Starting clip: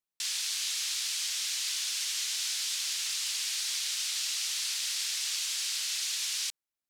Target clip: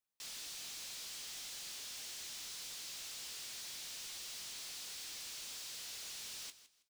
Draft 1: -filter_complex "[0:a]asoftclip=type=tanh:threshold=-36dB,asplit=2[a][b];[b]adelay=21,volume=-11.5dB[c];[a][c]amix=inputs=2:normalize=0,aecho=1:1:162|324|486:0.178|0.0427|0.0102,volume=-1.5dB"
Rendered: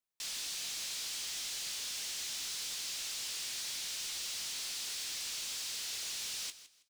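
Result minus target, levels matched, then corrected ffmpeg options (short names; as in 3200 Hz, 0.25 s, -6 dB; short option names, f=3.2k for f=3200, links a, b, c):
soft clip: distortion -4 dB
-filter_complex "[0:a]asoftclip=type=tanh:threshold=-45dB,asplit=2[a][b];[b]adelay=21,volume=-11.5dB[c];[a][c]amix=inputs=2:normalize=0,aecho=1:1:162|324|486:0.178|0.0427|0.0102,volume=-1.5dB"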